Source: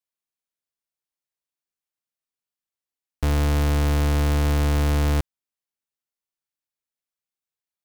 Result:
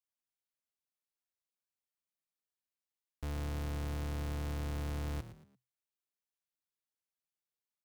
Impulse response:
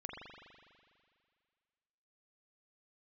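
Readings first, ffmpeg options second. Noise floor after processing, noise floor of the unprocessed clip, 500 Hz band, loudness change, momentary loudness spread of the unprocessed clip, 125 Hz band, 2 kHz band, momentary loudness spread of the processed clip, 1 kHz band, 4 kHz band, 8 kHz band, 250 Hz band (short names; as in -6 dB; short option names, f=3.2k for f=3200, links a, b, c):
under -85 dBFS, under -85 dBFS, -17.0 dB, -17.0 dB, 5 LU, -17.0 dB, -17.0 dB, 5 LU, -17.0 dB, -17.0 dB, -17.0 dB, -17.0 dB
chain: -filter_complex "[0:a]asoftclip=type=tanh:threshold=-30.5dB,asplit=4[a][b][c][d];[b]adelay=114,afreqshift=42,volume=-13dB[e];[c]adelay=228,afreqshift=84,volume=-22.6dB[f];[d]adelay=342,afreqshift=126,volume=-32.3dB[g];[a][e][f][g]amix=inputs=4:normalize=0,volume=-6.5dB"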